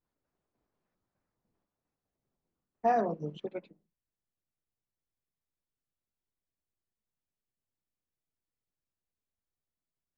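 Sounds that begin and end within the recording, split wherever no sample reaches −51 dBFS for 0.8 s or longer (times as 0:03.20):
0:02.84–0:03.73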